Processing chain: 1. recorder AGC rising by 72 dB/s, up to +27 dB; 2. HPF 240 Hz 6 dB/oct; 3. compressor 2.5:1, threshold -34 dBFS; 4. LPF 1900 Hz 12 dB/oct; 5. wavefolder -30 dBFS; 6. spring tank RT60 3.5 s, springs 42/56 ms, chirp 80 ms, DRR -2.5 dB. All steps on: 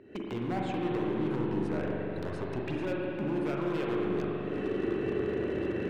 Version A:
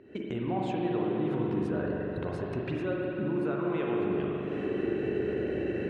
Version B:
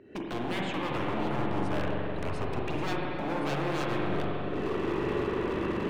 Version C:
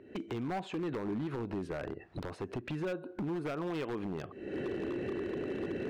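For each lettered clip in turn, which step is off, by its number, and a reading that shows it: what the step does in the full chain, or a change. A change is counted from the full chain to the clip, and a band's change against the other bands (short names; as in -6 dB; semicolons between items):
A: 5, distortion -11 dB; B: 3, mean gain reduction 4.5 dB; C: 6, crest factor change -5.5 dB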